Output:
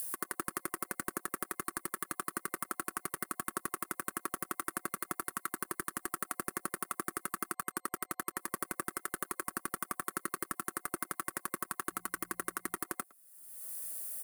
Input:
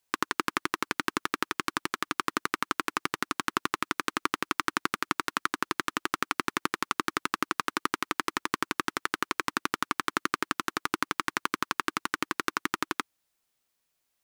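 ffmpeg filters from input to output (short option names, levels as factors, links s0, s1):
-filter_complex "[0:a]asoftclip=type=tanh:threshold=0.141,acompressor=mode=upward:threshold=0.0224:ratio=2.5,asplit=2[s0][s1];[s1]adelay=110,highpass=300,lowpass=3400,asoftclip=type=hard:threshold=0.075,volume=0.0708[s2];[s0][s2]amix=inputs=2:normalize=0,alimiter=limit=0.106:level=0:latency=1:release=25,aecho=1:1:5.3:0.43,asettb=1/sr,asplit=3[s3][s4][s5];[s3]atrim=end=7.534[s6];[s4]atrim=start=7.53:end=8.38,asetpts=PTS-STARTPTS,afade=t=in:d=0.004:c=qsin,afade=t=out:st=0.846:d=0.004:c=qsin,aeval=exprs='sgn(val(0))*max(abs(val(0))-0.00126,0)':c=same[s7];[s5]atrim=start=8.376[s8];[s6][s7]acrossfade=d=0.004:c1=hsin:c2=qsin[s9];[s9][s8]acrossfade=d=0.004:c1=qsin:c2=hsin,asplit=3[s10][s11][s12];[s10]afade=t=out:st=11.9:d=0.02[s13];[s11]bandreject=f=58.45:t=h:w=4,bandreject=f=116.9:t=h:w=4,bandreject=f=175.35:t=h:w=4,afade=t=in:st=11.9:d=0.02,afade=t=out:st=12.75:d=0.02[s14];[s12]afade=t=in:st=12.75:d=0.02[s15];[s13][s14][s15]amix=inputs=3:normalize=0,aexciter=amount=6.7:drive=1.5:freq=7800,superequalizer=8b=2:9b=0.631:12b=0.501:13b=0.447:16b=2,volume=0.631"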